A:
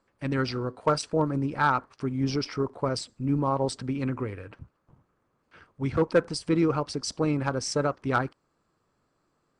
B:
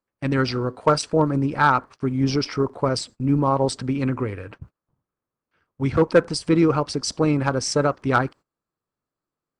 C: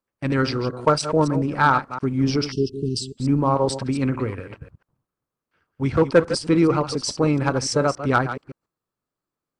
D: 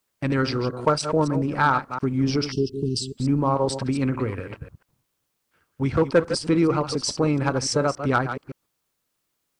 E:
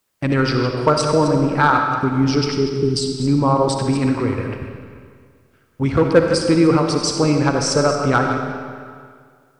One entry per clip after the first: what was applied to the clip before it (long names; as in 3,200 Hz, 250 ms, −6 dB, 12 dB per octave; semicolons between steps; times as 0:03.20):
noise gate −47 dBFS, range −21 dB; level +6 dB
delay that plays each chunk backwards 142 ms, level −10.5 dB; time-frequency box erased 0:02.51–0:03.17, 440–2,600 Hz
in parallel at +2 dB: downward compressor, threshold −26 dBFS, peak gain reduction 15 dB; on the sum: bit-depth reduction 12 bits, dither triangular; level −5 dB
comb and all-pass reverb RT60 2 s, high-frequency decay 0.85×, pre-delay 20 ms, DRR 4 dB; level +4.5 dB